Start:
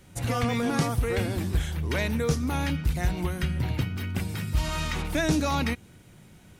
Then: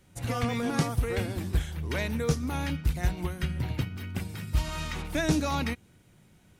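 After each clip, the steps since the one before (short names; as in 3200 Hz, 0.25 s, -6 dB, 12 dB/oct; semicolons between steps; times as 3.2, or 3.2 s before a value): upward expander 1.5:1, over -34 dBFS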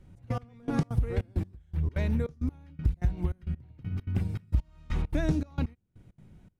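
tilt -3 dB/oct; compressor 6:1, threshold -20 dBFS, peak gain reduction 11.5 dB; step gate "xx..x....xx.xx" 199 bpm -24 dB; gain -2.5 dB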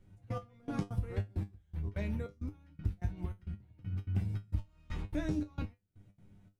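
resonator 100 Hz, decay 0.17 s, harmonics all, mix 90%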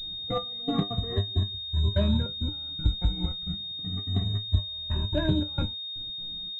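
moving spectral ripple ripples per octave 1.4, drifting -0.32 Hz, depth 21 dB; pulse-width modulation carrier 3700 Hz; gain +5.5 dB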